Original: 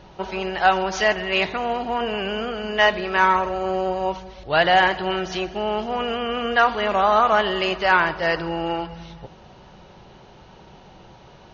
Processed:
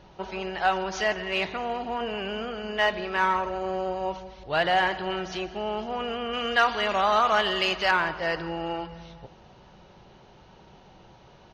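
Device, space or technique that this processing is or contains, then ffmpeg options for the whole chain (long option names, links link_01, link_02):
parallel distortion: -filter_complex "[0:a]asettb=1/sr,asplit=3[link_01][link_02][link_03];[link_01]atrim=end=6.334[link_04];[link_02]atrim=start=6.33:end=7.91,asetpts=PTS-STARTPTS,afade=type=in:duration=0.004:curve=qsin,afade=type=out:start_time=1.576:duration=0.004:curve=qsin,highshelf=frequency=2100:gain=10[link_05];[link_03]atrim=start=7.906[link_06];[link_04][link_05]acrossfade=duration=0.004:curve1=hsin:curve2=qsin[link_07];[link_07][link_06]acrossfade=duration=0.004:curve1=qsin:curve2=hsin,aecho=1:1:169|338|507|676:0.0841|0.0488|0.0283|0.0164,asplit=2[link_08][link_09];[link_09]asoftclip=type=hard:threshold=-19dB,volume=-13dB[link_10];[link_08][link_10]amix=inputs=2:normalize=0,volume=-7.5dB"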